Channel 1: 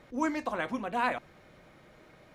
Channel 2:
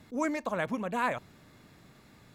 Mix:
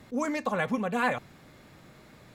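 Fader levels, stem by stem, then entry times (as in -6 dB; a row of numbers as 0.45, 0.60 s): -2.0, +2.0 dB; 0.00, 0.00 s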